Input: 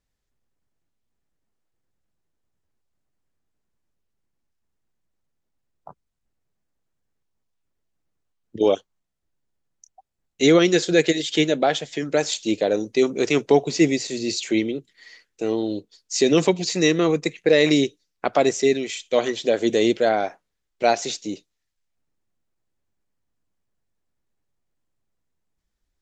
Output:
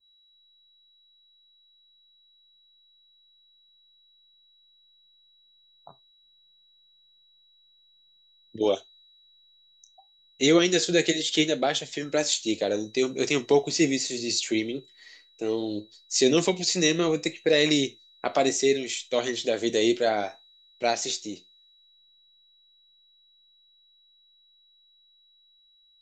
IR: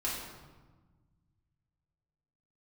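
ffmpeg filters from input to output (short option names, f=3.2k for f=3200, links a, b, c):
-filter_complex "[0:a]flanger=delay=7.2:depth=4.5:regen=72:speed=0.68:shape=triangular,dynaudnorm=f=800:g=13:m=6.5dB,aeval=exprs='val(0)+0.00224*sin(2*PI*3900*n/s)':c=same,asplit=2[a][b];[1:a]atrim=start_sample=2205,atrim=end_sample=3528[c];[b][c]afir=irnorm=-1:irlink=0,volume=-19.5dB[d];[a][d]amix=inputs=2:normalize=0,adynamicequalizer=threshold=0.0141:dfrequency=2800:dqfactor=0.7:tfrequency=2800:tqfactor=0.7:attack=5:release=100:ratio=0.375:range=3.5:mode=boostabove:tftype=highshelf,volume=-6.5dB"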